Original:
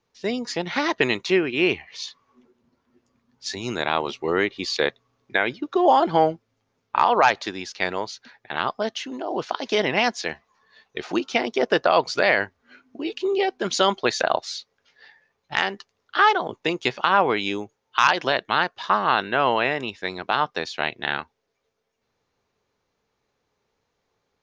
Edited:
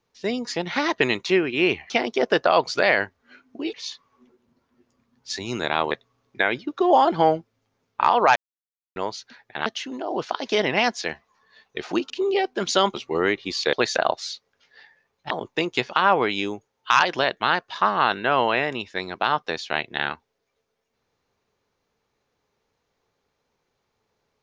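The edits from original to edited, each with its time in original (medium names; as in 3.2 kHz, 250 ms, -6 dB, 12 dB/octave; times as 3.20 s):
4.07–4.86 s: move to 13.98 s
7.31–7.91 s: mute
8.61–8.86 s: delete
11.30–13.14 s: move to 1.90 s
15.56–16.39 s: delete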